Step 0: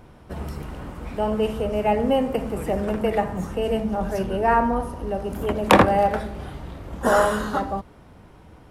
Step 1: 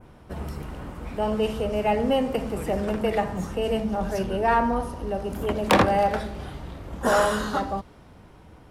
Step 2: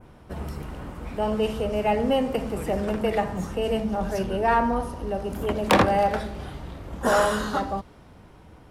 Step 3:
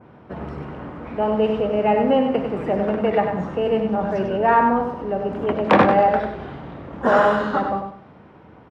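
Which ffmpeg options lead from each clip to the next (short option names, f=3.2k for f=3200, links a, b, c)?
-af "adynamicequalizer=threshold=0.00794:dfrequency=4700:dqfactor=0.78:tfrequency=4700:tqfactor=0.78:attack=5:release=100:ratio=0.375:range=3:mode=boostabove:tftype=bell,acontrast=82,volume=-8.5dB"
-af anull
-af "highpass=130,lowpass=2.2k,aecho=1:1:97|194|291:0.447|0.125|0.035,volume=4.5dB"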